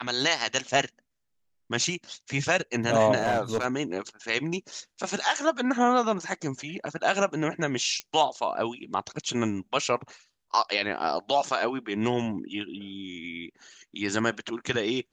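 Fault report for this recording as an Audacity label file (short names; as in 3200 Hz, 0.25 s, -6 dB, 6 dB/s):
3.180000	3.650000	clipped -20 dBFS
8.000000	8.000000	pop -16 dBFS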